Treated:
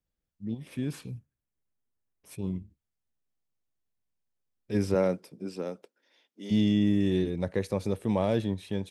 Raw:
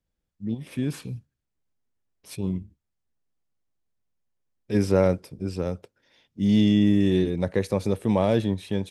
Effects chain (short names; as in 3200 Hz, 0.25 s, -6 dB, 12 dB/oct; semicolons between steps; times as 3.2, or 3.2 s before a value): 1.11–2.39 bell 4300 Hz -9 dB 0.93 oct; 4.94–6.5 HPF 130 Hz -> 330 Hz 24 dB/oct; gain -5 dB